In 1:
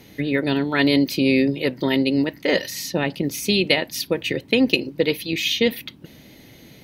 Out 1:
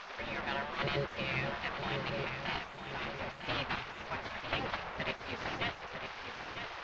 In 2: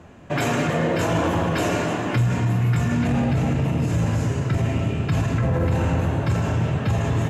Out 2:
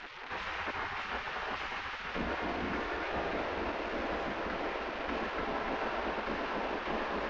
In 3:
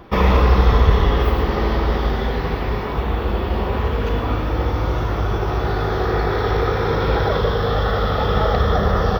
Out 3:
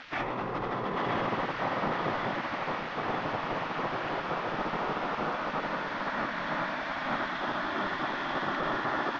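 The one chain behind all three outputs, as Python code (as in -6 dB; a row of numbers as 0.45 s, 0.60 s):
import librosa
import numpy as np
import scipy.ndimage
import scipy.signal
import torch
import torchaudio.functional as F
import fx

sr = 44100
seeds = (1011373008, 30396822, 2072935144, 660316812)

p1 = fx.delta_mod(x, sr, bps=32000, step_db=-23.5)
p2 = fx.spec_gate(p1, sr, threshold_db=-15, keep='weak')
p3 = scipy.signal.sosfilt(scipy.signal.butter(2, 2100.0, 'lowpass', fs=sr, output='sos'), p2)
p4 = fx.over_compress(p3, sr, threshold_db=-26.0, ratio=-1.0)
p5 = p4 + fx.echo_feedback(p4, sr, ms=952, feedback_pct=31, wet_db=-8.0, dry=0)
y = F.gain(torch.from_numpy(p5), -4.0).numpy()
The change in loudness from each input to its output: -16.5 LU, -13.5 LU, -12.5 LU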